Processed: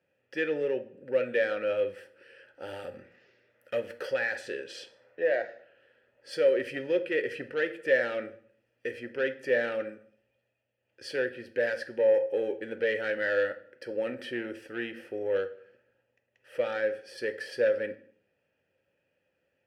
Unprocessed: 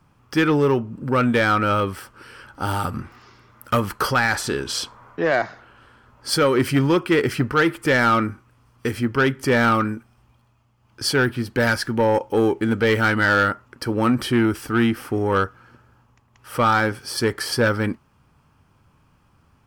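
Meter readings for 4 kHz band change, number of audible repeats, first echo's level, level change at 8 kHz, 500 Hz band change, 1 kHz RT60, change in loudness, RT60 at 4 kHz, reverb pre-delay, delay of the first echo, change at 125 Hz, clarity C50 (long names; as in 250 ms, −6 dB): −16.0 dB, no echo audible, no echo audible, below −20 dB, −5.0 dB, 0.50 s, −10.0 dB, 0.45 s, 3 ms, no echo audible, −28.0 dB, 15.0 dB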